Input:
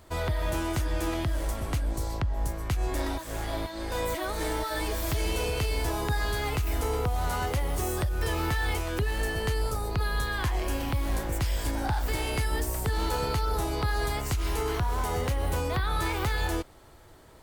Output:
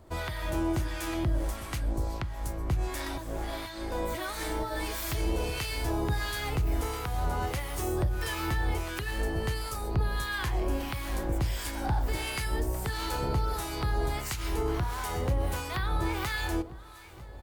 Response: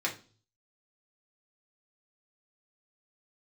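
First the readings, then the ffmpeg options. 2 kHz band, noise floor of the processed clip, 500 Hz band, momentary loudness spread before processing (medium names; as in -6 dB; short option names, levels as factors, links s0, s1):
-2.0 dB, -41 dBFS, -3.0 dB, 3 LU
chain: -filter_complex "[0:a]aecho=1:1:951|1902|2853|3804:0.106|0.0561|0.0298|0.0158,asplit=2[s0][s1];[1:a]atrim=start_sample=2205,lowshelf=f=240:g=11.5[s2];[s1][s2]afir=irnorm=-1:irlink=0,volume=0.112[s3];[s0][s3]amix=inputs=2:normalize=0,acrossover=split=1000[s4][s5];[s4]aeval=exprs='val(0)*(1-0.7/2+0.7/2*cos(2*PI*1.5*n/s))':c=same[s6];[s5]aeval=exprs='val(0)*(1-0.7/2-0.7/2*cos(2*PI*1.5*n/s))':c=same[s7];[s6][s7]amix=inputs=2:normalize=0"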